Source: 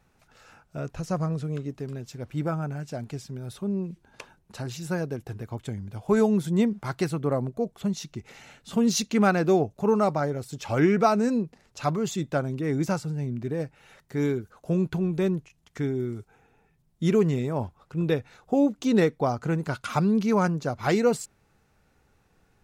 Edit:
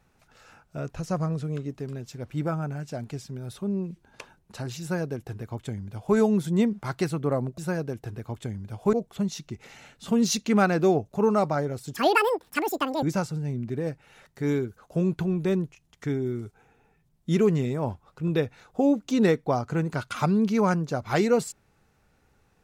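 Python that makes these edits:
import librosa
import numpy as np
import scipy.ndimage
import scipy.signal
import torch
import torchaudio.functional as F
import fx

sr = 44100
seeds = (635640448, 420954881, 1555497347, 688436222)

y = fx.edit(x, sr, fx.duplicate(start_s=4.81, length_s=1.35, to_s=7.58),
    fx.speed_span(start_s=10.59, length_s=2.17, speed=2.0), tone=tone)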